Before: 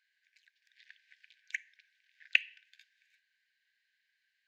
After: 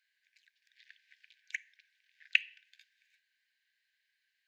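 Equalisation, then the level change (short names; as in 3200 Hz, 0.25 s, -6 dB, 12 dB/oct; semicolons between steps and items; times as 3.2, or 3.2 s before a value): HPF 1500 Hz; 0.0 dB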